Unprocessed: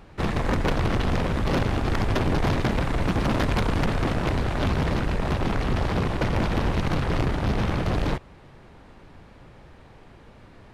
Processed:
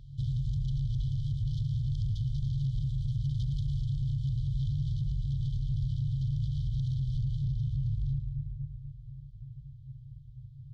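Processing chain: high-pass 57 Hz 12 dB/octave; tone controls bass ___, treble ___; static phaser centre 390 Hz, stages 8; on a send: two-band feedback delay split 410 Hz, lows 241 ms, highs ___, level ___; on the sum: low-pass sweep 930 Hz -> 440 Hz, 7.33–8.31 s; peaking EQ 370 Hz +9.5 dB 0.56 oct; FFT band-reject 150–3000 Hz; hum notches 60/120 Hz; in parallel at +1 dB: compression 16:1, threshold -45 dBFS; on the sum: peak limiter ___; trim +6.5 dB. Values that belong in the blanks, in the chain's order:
0 dB, +14 dB, 110 ms, -11 dB, -31 dBFS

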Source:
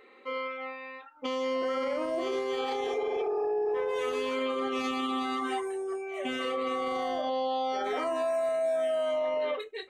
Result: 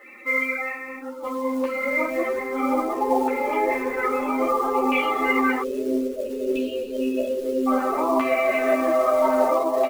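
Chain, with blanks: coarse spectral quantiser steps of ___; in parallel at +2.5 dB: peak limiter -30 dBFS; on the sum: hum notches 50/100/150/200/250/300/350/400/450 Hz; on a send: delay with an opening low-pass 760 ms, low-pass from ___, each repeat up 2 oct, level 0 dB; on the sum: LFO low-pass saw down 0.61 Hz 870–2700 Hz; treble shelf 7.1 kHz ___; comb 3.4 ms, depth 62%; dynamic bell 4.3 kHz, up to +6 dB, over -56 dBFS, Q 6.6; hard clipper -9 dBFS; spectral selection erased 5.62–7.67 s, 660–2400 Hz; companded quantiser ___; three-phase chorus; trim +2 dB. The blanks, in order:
30 dB, 400 Hz, -11 dB, 6-bit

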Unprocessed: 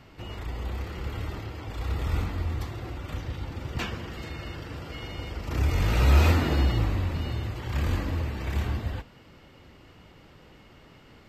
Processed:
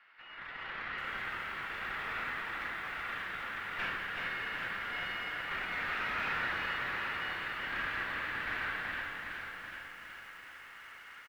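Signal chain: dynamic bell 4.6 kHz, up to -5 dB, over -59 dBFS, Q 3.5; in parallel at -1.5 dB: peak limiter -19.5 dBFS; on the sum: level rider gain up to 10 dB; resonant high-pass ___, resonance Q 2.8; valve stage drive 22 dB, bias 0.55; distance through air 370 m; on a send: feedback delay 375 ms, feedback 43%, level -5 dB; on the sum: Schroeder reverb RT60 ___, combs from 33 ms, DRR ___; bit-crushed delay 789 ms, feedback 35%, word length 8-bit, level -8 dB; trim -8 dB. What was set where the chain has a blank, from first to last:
1.6 kHz, 0.45 s, 8 dB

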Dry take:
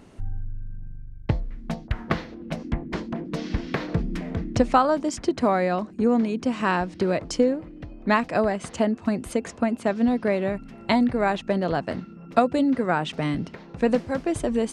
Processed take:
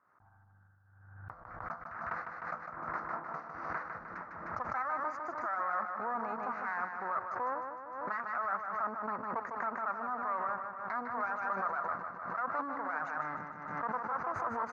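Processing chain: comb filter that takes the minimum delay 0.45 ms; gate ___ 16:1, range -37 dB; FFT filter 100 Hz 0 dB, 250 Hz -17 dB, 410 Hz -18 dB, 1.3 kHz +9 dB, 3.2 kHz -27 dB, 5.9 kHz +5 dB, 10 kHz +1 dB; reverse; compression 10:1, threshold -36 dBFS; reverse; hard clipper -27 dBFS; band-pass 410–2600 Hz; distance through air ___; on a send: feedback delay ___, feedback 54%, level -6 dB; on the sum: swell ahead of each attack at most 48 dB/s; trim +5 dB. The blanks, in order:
-31 dBFS, 230 m, 153 ms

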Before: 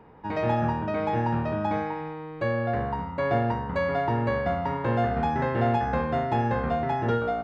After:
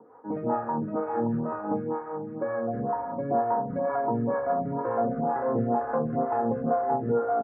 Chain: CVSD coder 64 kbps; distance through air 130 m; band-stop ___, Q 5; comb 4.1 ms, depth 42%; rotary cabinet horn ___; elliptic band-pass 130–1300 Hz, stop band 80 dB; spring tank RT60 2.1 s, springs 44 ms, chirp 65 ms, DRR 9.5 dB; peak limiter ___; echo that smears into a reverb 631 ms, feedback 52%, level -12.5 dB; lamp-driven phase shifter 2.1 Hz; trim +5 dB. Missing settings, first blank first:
190 Hz, 5 Hz, -19.5 dBFS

